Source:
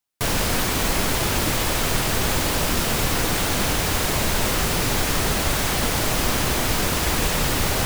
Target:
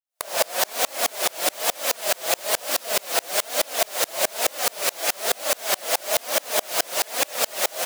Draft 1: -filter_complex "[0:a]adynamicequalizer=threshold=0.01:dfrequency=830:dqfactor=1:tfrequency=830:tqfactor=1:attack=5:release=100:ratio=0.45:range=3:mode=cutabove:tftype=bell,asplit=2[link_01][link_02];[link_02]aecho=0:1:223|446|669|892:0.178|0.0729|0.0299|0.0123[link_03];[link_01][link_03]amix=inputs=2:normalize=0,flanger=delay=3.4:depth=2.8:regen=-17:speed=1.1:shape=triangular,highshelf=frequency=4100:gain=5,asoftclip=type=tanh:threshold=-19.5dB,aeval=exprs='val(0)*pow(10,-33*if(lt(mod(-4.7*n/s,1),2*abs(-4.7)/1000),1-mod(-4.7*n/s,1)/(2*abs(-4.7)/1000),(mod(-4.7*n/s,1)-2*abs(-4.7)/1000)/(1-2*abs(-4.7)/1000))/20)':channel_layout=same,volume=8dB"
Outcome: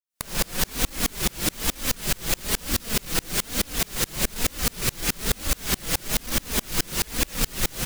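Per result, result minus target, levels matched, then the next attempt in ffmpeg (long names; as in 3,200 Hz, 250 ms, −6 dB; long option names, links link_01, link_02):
soft clipping: distortion +17 dB; 500 Hz band −6.5 dB
-filter_complex "[0:a]adynamicequalizer=threshold=0.01:dfrequency=830:dqfactor=1:tfrequency=830:tqfactor=1:attack=5:release=100:ratio=0.45:range=3:mode=cutabove:tftype=bell,asplit=2[link_01][link_02];[link_02]aecho=0:1:223|446|669|892:0.178|0.0729|0.0299|0.0123[link_03];[link_01][link_03]amix=inputs=2:normalize=0,flanger=delay=3.4:depth=2.8:regen=-17:speed=1.1:shape=triangular,highshelf=frequency=4100:gain=5,asoftclip=type=tanh:threshold=-9dB,aeval=exprs='val(0)*pow(10,-33*if(lt(mod(-4.7*n/s,1),2*abs(-4.7)/1000),1-mod(-4.7*n/s,1)/(2*abs(-4.7)/1000),(mod(-4.7*n/s,1)-2*abs(-4.7)/1000)/(1-2*abs(-4.7)/1000))/20)':channel_layout=same,volume=8dB"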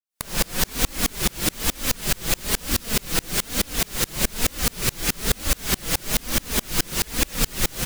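500 Hz band −6.5 dB
-filter_complex "[0:a]adynamicequalizer=threshold=0.01:dfrequency=830:dqfactor=1:tfrequency=830:tqfactor=1:attack=5:release=100:ratio=0.45:range=3:mode=cutabove:tftype=bell,highpass=frequency=630:width_type=q:width=5.1,asplit=2[link_01][link_02];[link_02]aecho=0:1:223|446|669|892:0.178|0.0729|0.0299|0.0123[link_03];[link_01][link_03]amix=inputs=2:normalize=0,flanger=delay=3.4:depth=2.8:regen=-17:speed=1.1:shape=triangular,highshelf=frequency=4100:gain=5,asoftclip=type=tanh:threshold=-9dB,aeval=exprs='val(0)*pow(10,-33*if(lt(mod(-4.7*n/s,1),2*abs(-4.7)/1000),1-mod(-4.7*n/s,1)/(2*abs(-4.7)/1000),(mod(-4.7*n/s,1)-2*abs(-4.7)/1000)/(1-2*abs(-4.7)/1000))/20)':channel_layout=same,volume=8dB"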